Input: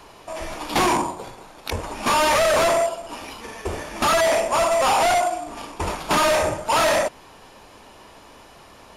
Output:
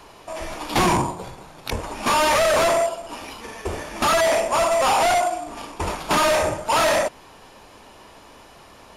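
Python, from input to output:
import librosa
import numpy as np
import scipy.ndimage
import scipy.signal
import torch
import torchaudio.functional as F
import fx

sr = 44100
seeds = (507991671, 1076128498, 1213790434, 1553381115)

y = fx.octave_divider(x, sr, octaves=1, level_db=2.0, at=(0.76, 1.75))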